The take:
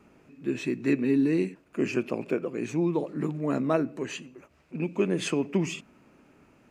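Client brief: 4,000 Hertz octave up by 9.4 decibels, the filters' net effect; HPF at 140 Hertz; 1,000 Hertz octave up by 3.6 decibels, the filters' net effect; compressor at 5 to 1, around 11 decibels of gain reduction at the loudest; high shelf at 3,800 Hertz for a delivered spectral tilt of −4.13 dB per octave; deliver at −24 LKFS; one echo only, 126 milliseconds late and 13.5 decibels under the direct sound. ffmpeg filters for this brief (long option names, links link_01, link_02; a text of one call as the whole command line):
ffmpeg -i in.wav -af "highpass=140,equalizer=frequency=1000:width_type=o:gain=3.5,highshelf=frequency=3800:gain=8.5,equalizer=frequency=4000:width_type=o:gain=7,acompressor=threshold=-32dB:ratio=5,aecho=1:1:126:0.211,volume=12dB" out.wav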